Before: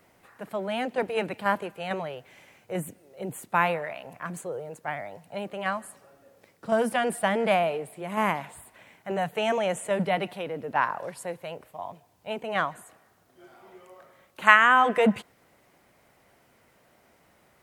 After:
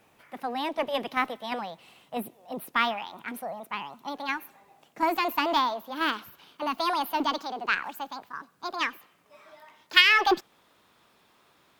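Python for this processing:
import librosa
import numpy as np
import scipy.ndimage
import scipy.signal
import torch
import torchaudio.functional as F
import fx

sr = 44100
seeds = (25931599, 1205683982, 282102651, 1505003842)

y = fx.speed_glide(x, sr, from_pct=122, to_pct=177)
y = fx.cheby_harmonics(y, sr, harmonics=(6,), levels_db=(-30,), full_scale_db=-1.0)
y = y * librosa.db_to_amplitude(-1.0)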